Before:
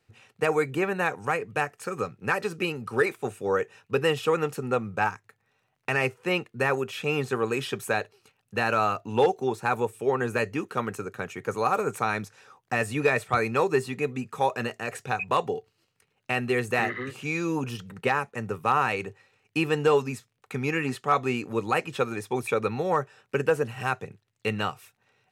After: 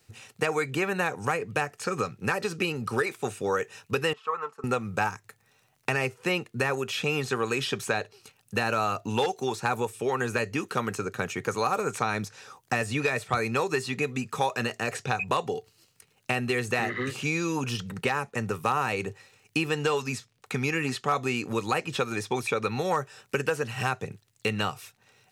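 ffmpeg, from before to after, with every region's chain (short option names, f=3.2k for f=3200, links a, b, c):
-filter_complex "[0:a]asettb=1/sr,asplit=3[a][b][c];[a]atrim=end=4.134[d];[b]atrim=start=4.13:end=4.64,asetpts=PTS-STARTPTS,afade=t=in:d=0.004:c=qsin,afade=t=out:st=0.506:d=0.004:c=qsin,agate=range=-33dB:threshold=-35dB:ratio=3:release=100:detection=peak,bandpass=f=1.1k:t=q:w=4.2,aecho=1:1:4.6:0.66,atrim=end_sample=22491[e];[c]atrim=start=4.636[f];[d][e]acrossfade=d=0.004:c1=hsin:c2=qsin[g];[g][f]acrossfade=d=0.004:c1=qsin:c2=hsin,bass=f=250:g=2,treble=f=4k:g=11,acrossover=split=960|5800[h][i][j];[h]acompressor=threshold=-32dB:ratio=4[k];[i]acompressor=threshold=-33dB:ratio=4[l];[j]acompressor=threshold=-56dB:ratio=4[m];[k][l][m]amix=inputs=3:normalize=0,volume=4.5dB"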